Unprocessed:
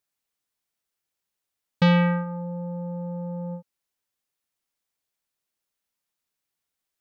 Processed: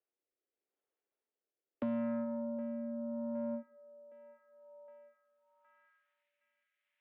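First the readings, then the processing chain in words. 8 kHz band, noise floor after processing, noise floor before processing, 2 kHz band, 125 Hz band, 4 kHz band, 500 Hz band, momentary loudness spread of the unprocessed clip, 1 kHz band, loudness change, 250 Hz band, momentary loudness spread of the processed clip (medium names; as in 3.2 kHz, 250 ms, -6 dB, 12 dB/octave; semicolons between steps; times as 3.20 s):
no reading, under -85 dBFS, -85 dBFS, -26.0 dB, -30.5 dB, under -35 dB, -8.5 dB, 15 LU, -19.0 dB, -13.0 dB, -10.5 dB, 21 LU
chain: on a send: feedback echo behind a band-pass 765 ms, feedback 39%, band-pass 890 Hz, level -14 dB; on the sum: rotary cabinet horn 0.8 Hz; in parallel at -1.5 dB: peak limiter -26 dBFS, peak gain reduction 12 dB; on the sum: Schroeder reverb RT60 0.44 s, combs from 27 ms, DRR 17.5 dB; mistuned SSB +58 Hz 150–3300 Hz; compression 6:1, threshold -20 dBFS, peak gain reduction 6 dB; band-pass sweep 410 Hz -> 2.1 kHz, 4.39–6.30 s; band-stop 960 Hz, Q 24; saturation -29 dBFS, distortion -17 dB; tape noise reduction on one side only encoder only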